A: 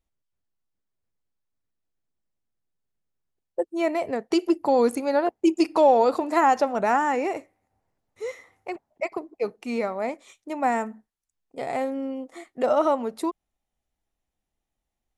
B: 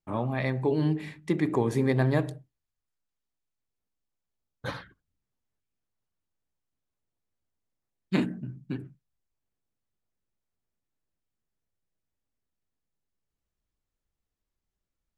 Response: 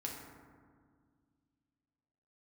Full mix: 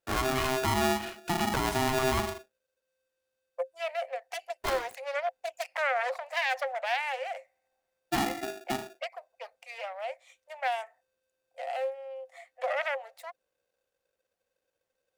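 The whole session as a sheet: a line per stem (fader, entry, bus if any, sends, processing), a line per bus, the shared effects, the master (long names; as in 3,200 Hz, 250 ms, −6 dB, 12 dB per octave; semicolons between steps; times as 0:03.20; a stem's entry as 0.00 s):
−1.0 dB, 0.00 s, no send, phase distortion by the signal itself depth 0.4 ms; Chebyshev high-pass with heavy ripple 510 Hz, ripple 9 dB; parametric band 1,400 Hz −4 dB 1 octave
+1.0 dB, 0.00 s, no send, hollow resonant body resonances 580/860/2,400/3,700 Hz, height 9 dB; ring modulator with a square carrier 520 Hz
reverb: not used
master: brickwall limiter −19 dBFS, peak gain reduction 10.5 dB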